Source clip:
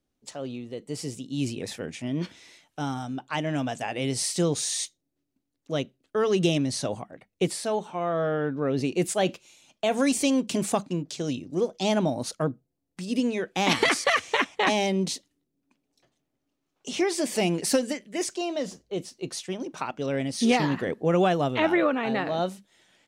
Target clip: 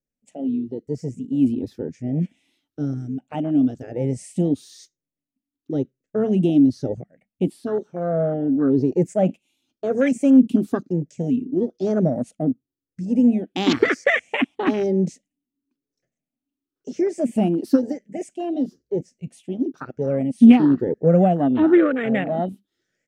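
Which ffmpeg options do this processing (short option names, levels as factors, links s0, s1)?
-af "afftfilt=real='re*pow(10,12/40*sin(2*PI*(0.55*log(max(b,1)*sr/1024/100)/log(2)-(1)*(pts-256)/sr)))':imag='im*pow(10,12/40*sin(2*PI*(0.55*log(max(b,1)*sr/1024/100)/log(2)-(1)*(pts-256)/sr)))':win_size=1024:overlap=0.75,afwtdn=0.0447,equalizer=f=250:t=o:w=0.67:g=7,equalizer=f=1000:t=o:w=0.67:g=-12,equalizer=f=4000:t=o:w=0.67:g=-6,equalizer=f=10000:t=o:w=0.67:g=-4,volume=1.41"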